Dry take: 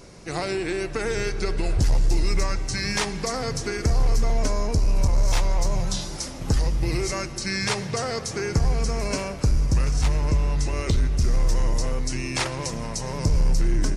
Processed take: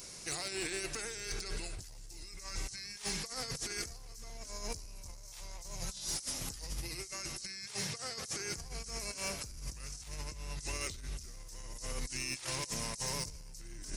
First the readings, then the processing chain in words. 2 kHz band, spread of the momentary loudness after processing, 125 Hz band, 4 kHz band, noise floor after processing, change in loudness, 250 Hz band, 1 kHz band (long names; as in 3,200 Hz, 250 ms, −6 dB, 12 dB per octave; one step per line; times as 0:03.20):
−12.0 dB, 12 LU, −22.5 dB, −8.5 dB, −49 dBFS, −14.5 dB, −19.0 dB, −16.0 dB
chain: first-order pre-emphasis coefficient 0.9
brickwall limiter −26 dBFS, peak gain reduction 7.5 dB
compressor whose output falls as the input rises −43 dBFS, ratio −0.5
hard clipping −32 dBFS, distortion −22 dB
level +3 dB